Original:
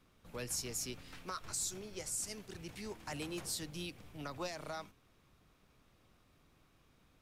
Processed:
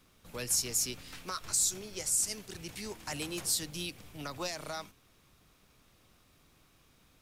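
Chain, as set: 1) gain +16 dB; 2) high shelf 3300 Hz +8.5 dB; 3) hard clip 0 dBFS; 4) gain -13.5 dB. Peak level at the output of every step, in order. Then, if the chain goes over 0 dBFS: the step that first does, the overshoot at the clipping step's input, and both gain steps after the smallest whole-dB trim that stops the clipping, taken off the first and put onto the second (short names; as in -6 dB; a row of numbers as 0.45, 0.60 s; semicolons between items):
-10.5, -3.5, -3.5, -17.0 dBFS; no overload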